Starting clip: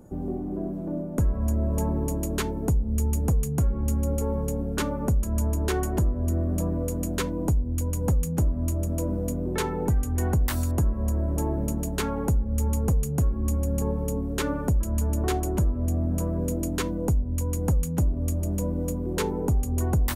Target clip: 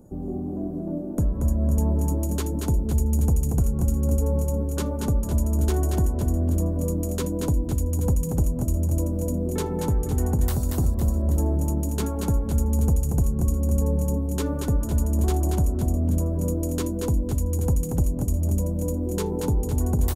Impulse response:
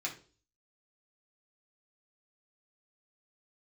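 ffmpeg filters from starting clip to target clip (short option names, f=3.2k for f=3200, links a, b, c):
-filter_complex "[0:a]equalizer=f=1.9k:t=o:w=1.7:g=-9.5,asplit=2[a][b];[b]aecho=0:1:232|507|829:0.631|0.299|0.106[c];[a][c]amix=inputs=2:normalize=0"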